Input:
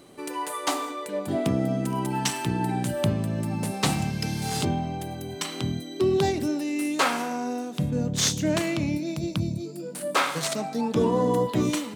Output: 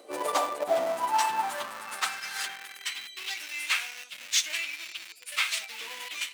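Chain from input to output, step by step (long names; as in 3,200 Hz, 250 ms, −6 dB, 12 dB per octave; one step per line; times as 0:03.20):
time stretch by phase vocoder 0.53×
in parallel at −5 dB: comparator with hysteresis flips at −30.5 dBFS
on the sum: high-pass filter sweep 500 Hz → 2,400 Hz, 0:00.01–0:03.21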